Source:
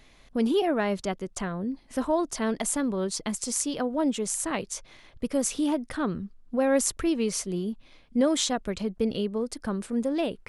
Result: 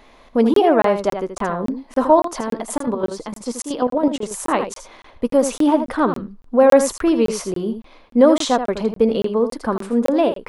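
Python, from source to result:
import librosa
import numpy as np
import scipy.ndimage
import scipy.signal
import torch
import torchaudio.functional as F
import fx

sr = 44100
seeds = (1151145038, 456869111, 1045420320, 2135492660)

y = fx.graphic_eq_10(x, sr, hz=(125, 250, 500, 1000, 8000), db=(-7, 4, 6, 10, -5))
y = fx.chopper(y, sr, hz=fx.line((2.07, 4.3), (4.31, 11.0)), depth_pct=65, duty_pct=45, at=(2.07, 4.31), fade=0.02)
y = fx.room_early_taps(y, sr, ms=(13, 80), db=(-16.0, -9.0))
y = fx.buffer_crackle(y, sr, first_s=0.54, period_s=0.28, block=1024, kind='zero')
y = y * 10.0 ** (4.0 / 20.0)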